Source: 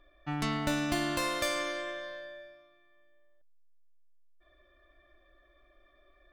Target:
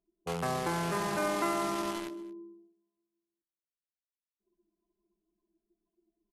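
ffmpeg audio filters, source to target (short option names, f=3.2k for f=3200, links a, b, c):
-filter_complex "[0:a]afftdn=nr=19:nf=-50,highpass=f=42:w=0.5412,highpass=f=42:w=1.3066,acrossover=split=270 3200:gain=0.112 1 0.0708[a][b][c];[a][b][c]amix=inputs=3:normalize=0,bandreject=f=50:t=h:w=6,bandreject=f=100:t=h:w=6,bandreject=f=150:t=h:w=6,bandreject=f=200:t=h:w=6,bandreject=f=250:t=h:w=6,bandreject=f=300:t=h:w=6,acrossover=split=1000[d][e];[d]alimiter=level_in=9dB:limit=-24dB:level=0:latency=1:release=27,volume=-9dB[f];[e]acrusher=bits=6:mix=0:aa=0.000001[g];[f][g]amix=inputs=2:normalize=0,asetrate=25476,aresample=44100,atempo=1.73107,aecho=1:1:225:0.0944,volume=4.5dB"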